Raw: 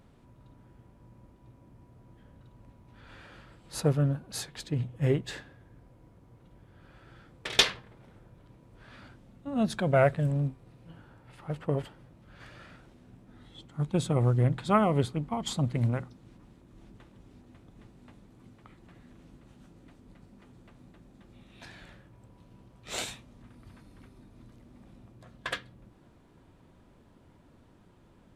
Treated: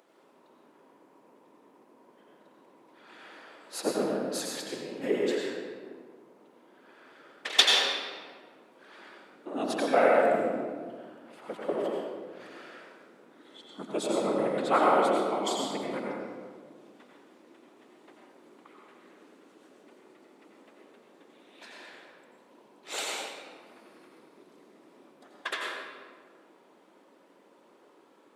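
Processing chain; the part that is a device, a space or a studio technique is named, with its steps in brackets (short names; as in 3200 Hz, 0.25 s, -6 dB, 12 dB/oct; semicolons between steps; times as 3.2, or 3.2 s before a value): whispering ghost (whisperiser; HPF 310 Hz 24 dB/oct; reverb RT60 1.8 s, pre-delay 82 ms, DRR -2 dB)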